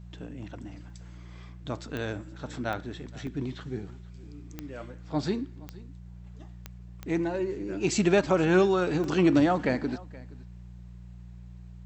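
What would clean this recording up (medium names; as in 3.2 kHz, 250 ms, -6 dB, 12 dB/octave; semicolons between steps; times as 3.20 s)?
de-click; de-hum 59.5 Hz, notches 3; interpolate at 0.90/3.27/9.04 s, 2.8 ms; inverse comb 473 ms -21.5 dB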